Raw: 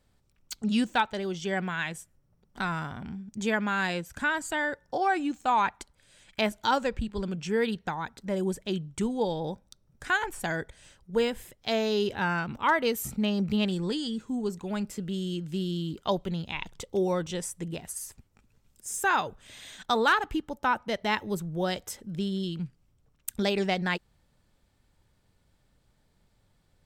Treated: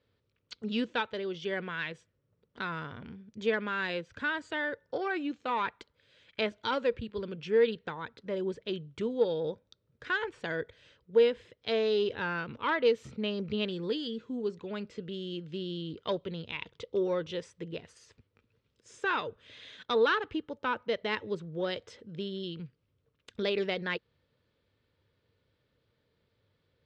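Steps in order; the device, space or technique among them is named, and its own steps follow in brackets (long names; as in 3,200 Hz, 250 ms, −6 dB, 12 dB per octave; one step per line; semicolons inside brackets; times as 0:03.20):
guitar amplifier (tube saturation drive 15 dB, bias 0.25; bass and treble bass −2 dB, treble +9 dB; loudspeaker in its box 87–3,700 Hz, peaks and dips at 97 Hz +5 dB, 190 Hz −5 dB, 470 Hz +9 dB, 780 Hz −10 dB)
level −3 dB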